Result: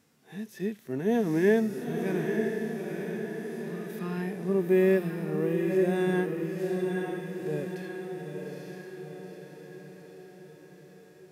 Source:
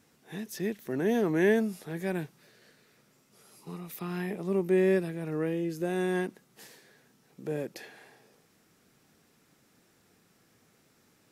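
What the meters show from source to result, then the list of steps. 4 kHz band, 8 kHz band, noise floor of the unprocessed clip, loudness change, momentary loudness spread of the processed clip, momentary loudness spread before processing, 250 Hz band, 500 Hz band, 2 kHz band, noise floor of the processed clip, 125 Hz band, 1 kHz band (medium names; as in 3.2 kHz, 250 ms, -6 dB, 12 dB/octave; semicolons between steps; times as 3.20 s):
0.0 dB, no reading, -66 dBFS, +1.0 dB, 20 LU, 18 LU, +3.0 dB, +3.0 dB, +1.0 dB, -54 dBFS, +3.5 dB, +2.0 dB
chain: echo that smears into a reverb 904 ms, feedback 57%, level -4 dB; harmonic-percussive split percussive -15 dB; trim +2 dB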